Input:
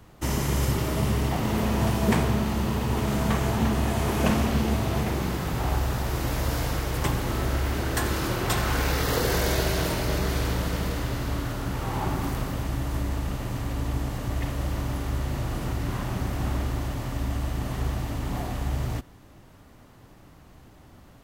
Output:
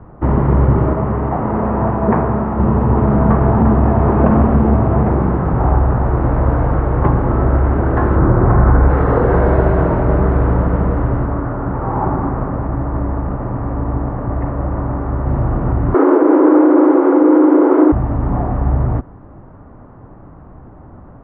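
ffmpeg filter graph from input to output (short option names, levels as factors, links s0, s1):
-filter_complex "[0:a]asettb=1/sr,asplit=3[s0][s1][s2];[s0]atrim=end=0.934[s3];[s1]atrim=start=0.93:end=2.59,asetpts=PTS-STARTPTS,afade=t=in:d=0.004:c=qsin,afade=t=out:st=1.656:d=0.004:c=qsin,lowshelf=f=330:g=-8,acrossover=split=3200[s4][s5];[s5]acompressor=threshold=0.00178:ratio=4:attack=1:release=60[s6];[s4][s6]amix=inputs=2:normalize=0[s7];[s2]atrim=start=2.586[s8];[s3][s7]acrossfade=d=0.004:c1=hsin:c2=qsin[s9];[s9][s8]acrossfade=d=0.004:c1=qsin:c2=hsin,asettb=1/sr,asplit=3[s10][s11][s12];[s10]atrim=end=8.164[s13];[s11]atrim=start=8.16:end=8.9,asetpts=PTS-STARTPTS,afade=t=in:d=0.004:c=qsin,afade=t=out:st=0.736:d=0.004:c=qsin,lowpass=f=2200:w=0.5412,lowpass=f=2200:w=1.3066,lowshelf=f=230:g=7[s14];[s12]atrim=start=8.896[s15];[s13][s14]acrossfade=d=0.004:c1=hsin:c2=qsin[s16];[s16][s15]acrossfade=d=0.004:c1=qsin:c2=hsin,asettb=1/sr,asplit=3[s17][s18][s19];[s17]atrim=end=11.264[s20];[s18]atrim=start=11.26:end=15.26,asetpts=PTS-STARTPTS,afade=t=in:d=0.004:c=qsin,afade=t=out:st=3.996:d=0.004:c=qsin,acrossover=split=2700[s21][s22];[s22]acompressor=threshold=0.002:ratio=4:attack=1:release=60[s23];[s21][s23]amix=inputs=2:normalize=0,lowshelf=f=190:g=-5.5[s24];[s19]atrim=start=15.256[s25];[s20][s24]acrossfade=d=0.004:c1=hsin:c2=qsin[s26];[s26][s25]acrossfade=d=0.004:c1=qsin:c2=hsin,asettb=1/sr,asplit=3[s27][s28][s29];[s27]atrim=end=15.944[s30];[s28]atrim=start=15.94:end=17.92,asetpts=PTS-STARTPTS,afade=t=in:d=0.004:c=qsin,afade=t=out:st=1.976:d=0.004:c=qsin,afreqshift=240,acontrast=80[s31];[s29]atrim=start=17.916[s32];[s30][s31]acrossfade=d=0.004:c1=hsin:c2=qsin[s33];[s33][s32]acrossfade=d=0.004:c1=qsin:c2=hsin,lowpass=f=1300:w=0.5412,lowpass=f=1300:w=1.3066,alimiter=level_in=5.01:limit=0.891:release=50:level=0:latency=1,volume=0.891"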